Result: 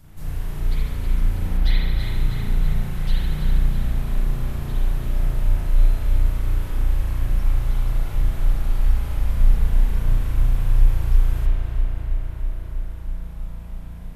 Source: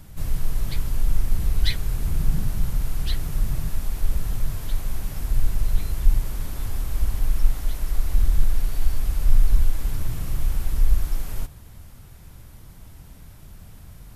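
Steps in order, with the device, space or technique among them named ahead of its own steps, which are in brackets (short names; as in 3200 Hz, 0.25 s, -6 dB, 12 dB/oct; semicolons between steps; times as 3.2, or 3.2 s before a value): dub delay into a spring reverb (darkening echo 0.323 s, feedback 80%, low-pass 3700 Hz, level -4.5 dB; spring tank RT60 1.3 s, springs 34 ms, chirp 40 ms, DRR -7.5 dB); 1.57–2 bell 7900 Hz -7.5 dB 0.92 oct; gain -7 dB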